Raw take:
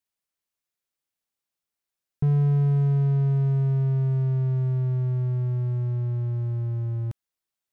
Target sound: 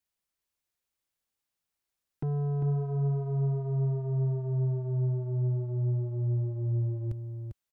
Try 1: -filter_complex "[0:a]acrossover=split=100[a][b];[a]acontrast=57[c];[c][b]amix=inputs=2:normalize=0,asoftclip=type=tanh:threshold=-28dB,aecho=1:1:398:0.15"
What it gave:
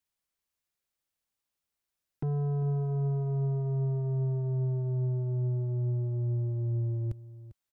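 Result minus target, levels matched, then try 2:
echo-to-direct -8.5 dB
-filter_complex "[0:a]acrossover=split=100[a][b];[a]acontrast=57[c];[c][b]amix=inputs=2:normalize=0,asoftclip=type=tanh:threshold=-28dB,aecho=1:1:398:0.422"

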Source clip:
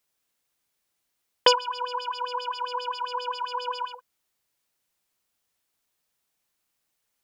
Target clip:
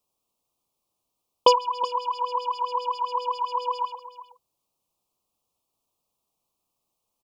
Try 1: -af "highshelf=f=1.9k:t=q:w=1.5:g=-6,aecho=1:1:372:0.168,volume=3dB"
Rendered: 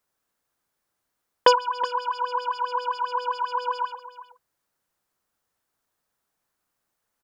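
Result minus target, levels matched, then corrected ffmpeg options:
2000 Hz band +14.5 dB
-af "asuperstop=centerf=1700:order=8:qfactor=1.4,highshelf=f=1.9k:t=q:w=1.5:g=-6,aecho=1:1:372:0.168,volume=3dB"

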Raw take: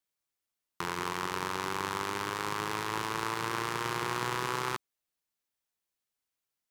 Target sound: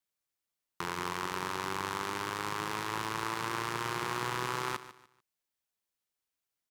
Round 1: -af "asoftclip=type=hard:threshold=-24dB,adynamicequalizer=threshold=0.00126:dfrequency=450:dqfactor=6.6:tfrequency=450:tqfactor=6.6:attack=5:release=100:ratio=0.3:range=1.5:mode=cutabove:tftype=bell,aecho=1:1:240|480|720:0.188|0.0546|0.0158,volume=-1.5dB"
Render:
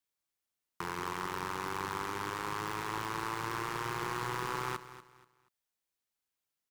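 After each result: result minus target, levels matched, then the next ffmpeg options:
hard clip: distortion +21 dB; echo 93 ms late
-af "asoftclip=type=hard:threshold=-16.5dB,adynamicequalizer=threshold=0.00126:dfrequency=450:dqfactor=6.6:tfrequency=450:tqfactor=6.6:attack=5:release=100:ratio=0.3:range=1.5:mode=cutabove:tftype=bell,aecho=1:1:240|480|720:0.188|0.0546|0.0158,volume=-1.5dB"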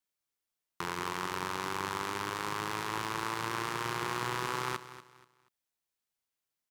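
echo 93 ms late
-af "asoftclip=type=hard:threshold=-16.5dB,adynamicequalizer=threshold=0.00126:dfrequency=450:dqfactor=6.6:tfrequency=450:tqfactor=6.6:attack=5:release=100:ratio=0.3:range=1.5:mode=cutabove:tftype=bell,aecho=1:1:147|294|441:0.188|0.0546|0.0158,volume=-1.5dB"

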